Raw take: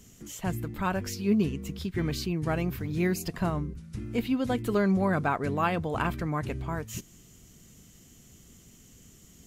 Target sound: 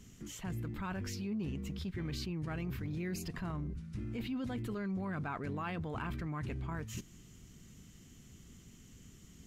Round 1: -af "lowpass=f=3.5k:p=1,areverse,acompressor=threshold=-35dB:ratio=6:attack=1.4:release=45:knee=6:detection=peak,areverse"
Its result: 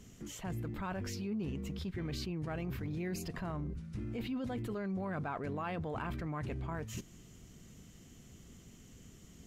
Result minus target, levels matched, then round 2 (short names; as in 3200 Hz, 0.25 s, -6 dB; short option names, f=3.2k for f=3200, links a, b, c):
500 Hz band +3.0 dB
-af "lowpass=f=3.5k:p=1,equalizer=f=600:w=1.2:g=-7,areverse,acompressor=threshold=-35dB:ratio=6:attack=1.4:release=45:knee=6:detection=peak,areverse"